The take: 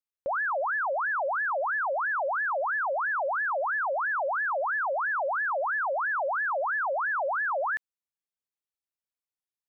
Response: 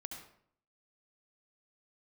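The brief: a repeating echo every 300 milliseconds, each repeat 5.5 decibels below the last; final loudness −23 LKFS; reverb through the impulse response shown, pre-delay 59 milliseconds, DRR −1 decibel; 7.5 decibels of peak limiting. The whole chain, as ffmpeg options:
-filter_complex "[0:a]alimiter=level_in=8.5dB:limit=-24dB:level=0:latency=1,volume=-8.5dB,aecho=1:1:300|600|900|1200|1500|1800|2100:0.531|0.281|0.149|0.079|0.0419|0.0222|0.0118,asplit=2[link_01][link_02];[1:a]atrim=start_sample=2205,adelay=59[link_03];[link_02][link_03]afir=irnorm=-1:irlink=0,volume=4dB[link_04];[link_01][link_04]amix=inputs=2:normalize=0,volume=7.5dB"

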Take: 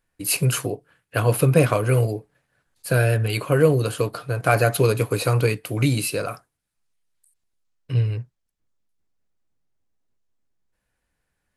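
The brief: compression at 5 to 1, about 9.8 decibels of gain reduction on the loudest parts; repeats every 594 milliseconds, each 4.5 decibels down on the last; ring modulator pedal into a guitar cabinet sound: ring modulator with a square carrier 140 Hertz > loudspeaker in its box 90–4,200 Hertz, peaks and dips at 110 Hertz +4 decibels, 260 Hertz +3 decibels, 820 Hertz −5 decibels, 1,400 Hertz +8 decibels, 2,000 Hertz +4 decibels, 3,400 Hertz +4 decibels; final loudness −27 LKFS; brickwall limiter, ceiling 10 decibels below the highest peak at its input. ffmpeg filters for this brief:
ffmpeg -i in.wav -af "acompressor=threshold=-22dB:ratio=5,alimiter=limit=-17.5dB:level=0:latency=1,aecho=1:1:594|1188|1782|2376|2970|3564|4158|4752|5346:0.596|0.357|0.214|0.129|0.0772|0.0463|0.0278|0.0167|0.01,aeval=exprs='val(0)*sgn(sin(2*PI*140*n/s))':channel_layout=same,highpass=90,equalizer=frequency=110:width_type=q:width=4:gain=4,equalizer=frequency=260:width_type=q:width=4:gain=3,equalizer=frequency=820:width_type=q:width=4:gain=-5,equalizer=frequency=1400:width_type=q:width=4:gain=8,equalizer=frequency=2000:width_type=q:width=4:gain=4,equalizer=frequency=3400:width_type=q:width=4:gain=4,lowpass=frequency=4200:width=0.5412,lowpass=frequency=4200:width=1.3066,volume=0.5dB" out.wav

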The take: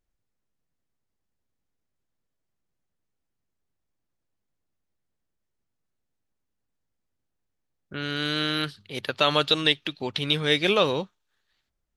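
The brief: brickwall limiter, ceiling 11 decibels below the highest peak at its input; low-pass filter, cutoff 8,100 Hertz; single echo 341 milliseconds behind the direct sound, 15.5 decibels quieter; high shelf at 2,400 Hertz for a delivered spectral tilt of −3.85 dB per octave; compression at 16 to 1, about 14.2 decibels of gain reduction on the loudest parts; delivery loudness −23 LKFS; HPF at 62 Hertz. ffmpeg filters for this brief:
ffmpeg -i in.wav -af "highpass=62,lowpass=8100,highshelf=frequency=2400:gain=8.5,acompressor=threshold=-25dB:ratio=16,alimiter=limit=-20.5dB:level=0:latency=1,aecho=1:1:341:0.168,volume=10dB" out.wav

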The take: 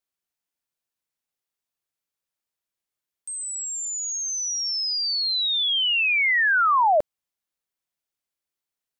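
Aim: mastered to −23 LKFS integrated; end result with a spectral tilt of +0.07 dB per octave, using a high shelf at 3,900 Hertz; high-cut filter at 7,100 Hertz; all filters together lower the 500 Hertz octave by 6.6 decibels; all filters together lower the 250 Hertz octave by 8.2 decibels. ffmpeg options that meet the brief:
ffmpeg -i in.wav -af "lowpass=7100,equalizer=frequency=250:width_type=o:gain=-8,equalizer=frequency=500:width_type=o:gain=-9,highshelf=frequency=3900:gain=8,volume=-4dB" out.wav

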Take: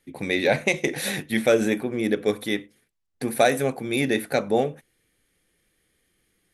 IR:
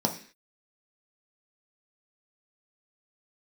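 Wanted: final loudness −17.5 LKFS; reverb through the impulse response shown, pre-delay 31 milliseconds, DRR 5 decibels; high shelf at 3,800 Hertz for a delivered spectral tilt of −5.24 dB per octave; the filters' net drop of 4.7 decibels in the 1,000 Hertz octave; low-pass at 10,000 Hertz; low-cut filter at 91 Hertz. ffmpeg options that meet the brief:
-filter_complex "[0:a]highpass=91,lowpass=10000,equalizer=frequency=1000:width_type=o:gain=-8,highshelf=frequency=3800:gain=-4.5,asplit=2[link_01][link_02];[1:a]atrim=start_sample=2205,adelay=31[link_03];[link_02][link_03]afir=irnorm=-1:irlink=0,volume=-14.5dB[link_04];[link_01][link_04]amix=inputs=2:normalize=0,volume=5dB"

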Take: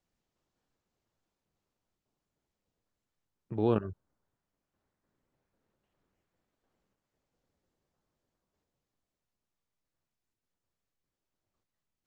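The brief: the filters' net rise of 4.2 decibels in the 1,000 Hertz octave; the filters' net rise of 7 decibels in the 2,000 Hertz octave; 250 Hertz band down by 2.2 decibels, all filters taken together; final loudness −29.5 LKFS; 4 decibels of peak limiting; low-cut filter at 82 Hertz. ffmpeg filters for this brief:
ffmpeg -i in.wav -af "highpass=82,equalizer=frequency=250:width_type=o:gain=-3.5,equalizer=frequency=1000:width_type=o:gain=3.5,equalizer=frequency=2000:width_type=o:gain=9,volume=3.5dB,alimiter=limit=-12.5dB:level=0:latency=1" out.wav

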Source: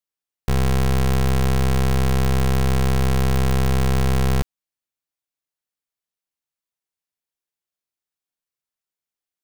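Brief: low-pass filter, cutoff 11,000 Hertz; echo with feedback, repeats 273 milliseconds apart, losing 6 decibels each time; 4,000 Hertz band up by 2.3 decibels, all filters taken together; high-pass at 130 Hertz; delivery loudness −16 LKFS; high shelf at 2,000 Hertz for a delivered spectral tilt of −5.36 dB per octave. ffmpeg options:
ffmpeg -i in.wav -af "highpass=130,lowpass=11000,highshelf=frequency=2000:gain=-4,equalizer=frequency=4000:width_type=o:gain=7,aecho=1:1:273|546|819|1092|1365|1638:0.501|0.251|0.125|0.0626|0.0313|0.0157,volume=7dB" out.wav

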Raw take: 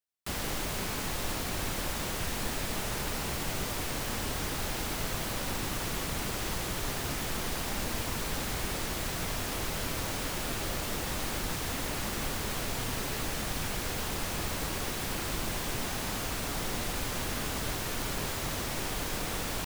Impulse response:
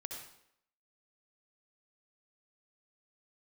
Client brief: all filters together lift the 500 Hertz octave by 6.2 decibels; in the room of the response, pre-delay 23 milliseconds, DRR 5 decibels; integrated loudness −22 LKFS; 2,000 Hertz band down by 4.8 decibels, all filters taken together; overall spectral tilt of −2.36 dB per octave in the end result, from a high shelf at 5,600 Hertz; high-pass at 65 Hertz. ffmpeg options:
-filter_complex "[0:a]highpass=65,equalizer=frequency=500:width_type=o:gain=8,equalizer=frequency=2000:width_type=o:gain=-8,highshelf=frequency=5600:gain=8.5,asplit=2[link_01][link_02];[1:a]atrim=start_sample=2205,adelay=23[link_03];[link_02][link_03]afir=irnorm=-1:irlink=0,volume=-3dB[link_04];[link_01][link_04]amix=inputs=2:normalize=0,volume=6dB"

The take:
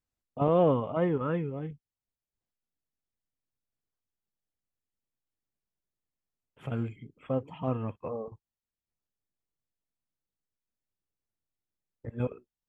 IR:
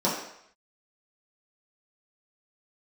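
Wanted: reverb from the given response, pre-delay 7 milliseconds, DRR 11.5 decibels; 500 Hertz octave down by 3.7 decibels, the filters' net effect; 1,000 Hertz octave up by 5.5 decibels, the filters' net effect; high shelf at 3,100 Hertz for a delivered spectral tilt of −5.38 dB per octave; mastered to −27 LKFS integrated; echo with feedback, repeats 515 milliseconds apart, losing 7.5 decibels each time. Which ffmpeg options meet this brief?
-filter_complex "[0:a]equalizer=frequency=500:width_type=o:gain=-7,equalizer=frequency=1000:width_type=o:gain=8.5,highshelf=frequency=3100:gain=8.5,aecho=1:1:515|1030|1545|2060|2575:0.422|0.177|0.0744|0.0312|0.0131,asplit=2[link_01][link_02];[1:a]atrim=start_sample=2205,adelay=7[link_03];[link_02][link_03]afir=irnorm=-1:irlink=0,volume=-25dB[link_04];[link_01][link_04]amix=inputs=2:normalize=0,volume=4dB"

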